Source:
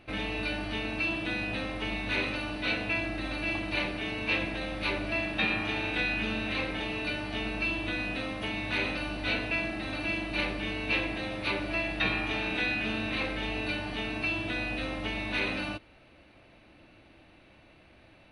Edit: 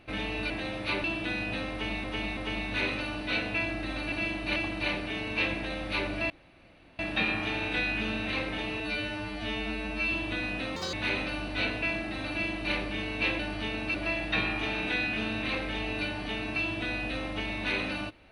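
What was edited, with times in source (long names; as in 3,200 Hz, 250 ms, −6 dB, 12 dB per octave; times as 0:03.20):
0:00.50–0:01.05: swap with 0:11.08–0:11.62
0:01.72–0:02.05: repeat, 3 plays
0:05.21: splice in room tone 0.69 s
0:07.02–0:07.68: time-stretch 2×
0:08.32–0:08.62: play speed 173%
0:09.99–0:10.43: duplicate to 0:03.47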